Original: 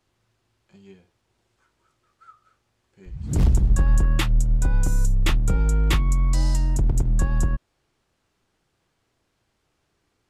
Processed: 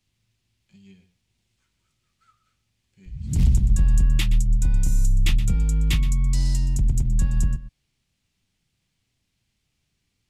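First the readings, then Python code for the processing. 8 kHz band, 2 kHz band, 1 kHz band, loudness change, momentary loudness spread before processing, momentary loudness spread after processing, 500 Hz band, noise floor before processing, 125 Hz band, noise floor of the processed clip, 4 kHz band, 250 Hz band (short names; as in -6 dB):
0.0 dB, -4.0 dB, -13.0 dB, 0.0 dB, 6 LU, 6 LU, -12.5 dB, -73 dBFS, 0.0 dB, -75 dBFS, 0.0 dB, -1.5 dB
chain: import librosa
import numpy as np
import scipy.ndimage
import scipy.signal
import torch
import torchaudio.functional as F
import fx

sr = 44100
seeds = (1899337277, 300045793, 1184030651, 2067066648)

y = fx.band_shelf(x, sr, hz=710.0, db=-13.0, octaves=2.7)
y = y + 10.0 ** (-14.5 / 20.0) * np.pad(y, (int(122 * sr / 1000.0), 0))[:len(y)]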